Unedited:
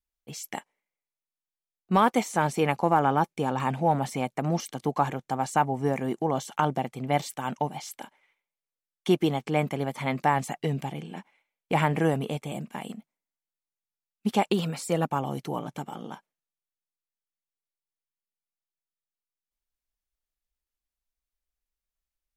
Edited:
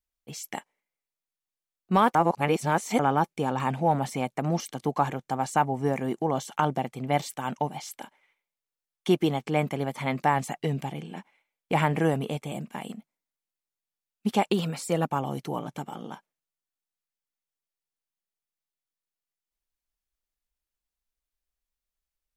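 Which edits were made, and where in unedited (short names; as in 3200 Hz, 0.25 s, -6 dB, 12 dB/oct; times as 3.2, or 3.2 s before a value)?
2.15–2.99 reverse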